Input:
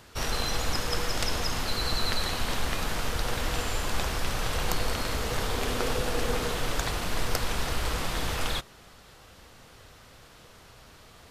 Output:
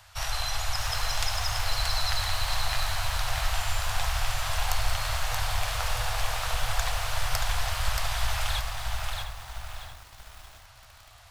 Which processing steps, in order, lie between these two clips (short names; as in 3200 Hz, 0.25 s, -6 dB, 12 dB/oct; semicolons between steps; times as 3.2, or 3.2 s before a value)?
Chebyshev band-stop 110–680 Hz, order 3; on a send: darkening echo 0.702 s, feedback 28%, low-pass 1400 Hz, level -5.5 dB; on the sum: lo-fi delay 0.628 s, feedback 35%, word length 8-bit, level -4 dB